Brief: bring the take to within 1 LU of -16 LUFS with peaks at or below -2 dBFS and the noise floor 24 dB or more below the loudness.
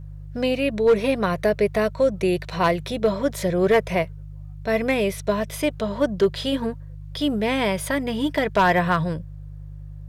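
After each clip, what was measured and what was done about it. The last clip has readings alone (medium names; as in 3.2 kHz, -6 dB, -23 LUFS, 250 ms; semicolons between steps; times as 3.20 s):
clipped samples 0.4%; clipping level -11.0 dBFS; hum 50 Hz; highest harmonic 150 Hz; hum level -35 dBFS; loudness -22.5 LUFS; peak level -11.0 dBFS; loudness target -16.0 LUFS
-> clip repair -11 dBFS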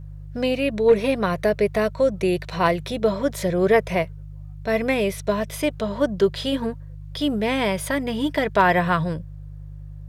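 clipped samples 0.0%; hum 50 Hz; highest harmonic 150 Hz; hum level -34 dBFS
-> de-hum 50 Hz, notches 3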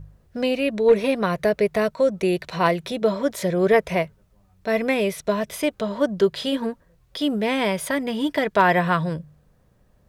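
hum not found; loudness -22.5 LUFS; peak level -3.5 dBFS; loudness target -16.0 LUFS
-> trim +6.5 dB; peak limiter -2 dBFS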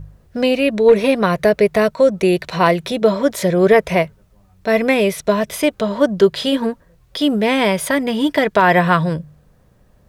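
loudness -16.0 LUFS; peak level -2.0 dBFS; noise floor -53 dBFS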